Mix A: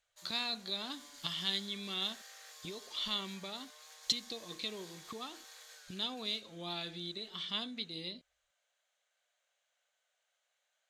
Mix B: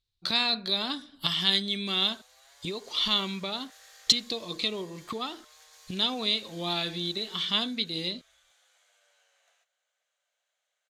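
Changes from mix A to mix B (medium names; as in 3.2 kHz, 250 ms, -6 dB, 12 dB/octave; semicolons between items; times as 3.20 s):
speech +10.5 dB; background: entry +1.70 s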